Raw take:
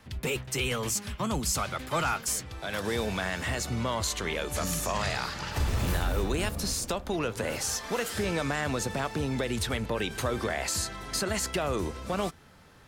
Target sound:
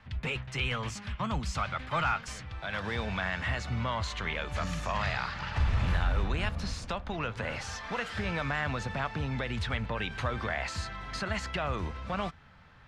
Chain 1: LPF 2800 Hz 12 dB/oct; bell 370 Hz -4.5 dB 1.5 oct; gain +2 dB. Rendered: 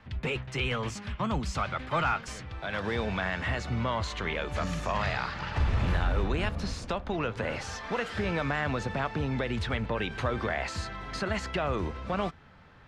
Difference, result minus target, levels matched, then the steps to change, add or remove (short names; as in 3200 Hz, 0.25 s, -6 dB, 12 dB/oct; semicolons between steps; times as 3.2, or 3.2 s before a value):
500 Hz band +3.5 dB
change: bell 370 Hz -12 dB 1.5 oct